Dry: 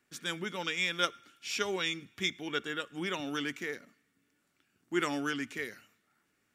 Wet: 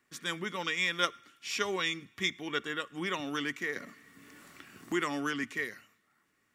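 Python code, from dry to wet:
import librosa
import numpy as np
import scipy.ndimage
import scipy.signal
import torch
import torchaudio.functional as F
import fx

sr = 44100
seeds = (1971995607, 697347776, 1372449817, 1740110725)

y = fx.small_body(x, sr, hz=(1100.0, 1900.0), ring_ms=25, db=9)
y = fx.band_squash(y, sr, depth_pct=70, at=(3.76, 5.44))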